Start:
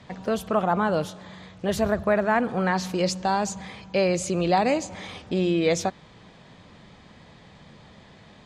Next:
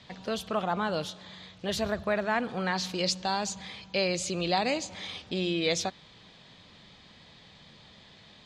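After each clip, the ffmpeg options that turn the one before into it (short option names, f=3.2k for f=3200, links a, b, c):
-af "equalizer=f=3.9k:t=o:w=1.5:g=12,volume=-7.5dB"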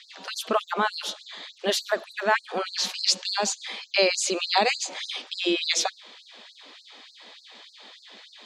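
-af "afftfilt=real='re*gte(b*sr/1024,200*pow(4100/200,0.5+0.5*sin(2*PI*3.4*pts/sr)))':imag='im*gte(b*sr/1024,200*pow(4100/200,0.5+0.5*sin(2*PI*3.4*pts/sr)))':win_size=1024:overlap=0.75,volume=8dB"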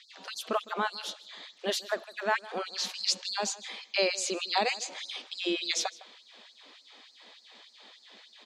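-filter_complex "[0:a]asplit=2[a][b];[b]adelay=157.4,volume=-19dB,highshelf=f=4k:g=-3.54[c];[a][c]amix=inputs=2:normalize=0,volume=-6dB"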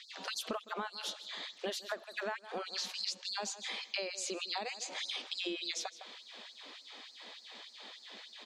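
-af "acompressor=threshold=-38dB:ratio=12,volume=3dB"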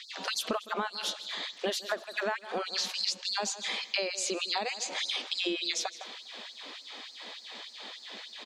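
-af "aecho=1:1:243:0.075,volume=6.5dB"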